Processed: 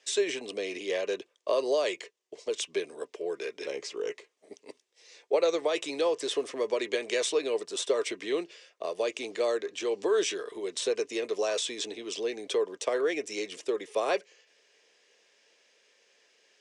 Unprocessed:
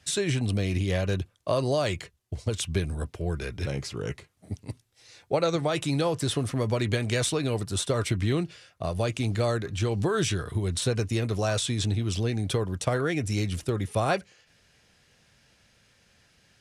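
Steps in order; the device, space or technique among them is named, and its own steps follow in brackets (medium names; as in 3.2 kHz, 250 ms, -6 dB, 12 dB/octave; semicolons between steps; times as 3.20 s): phone speaker on a table (cabinet simulation 380–7600 Hz, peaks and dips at 430 Hz +6 dB, 770 Hz -6 dB, 1.4 kHz -9 dB, 4.2 kHz -4 dB)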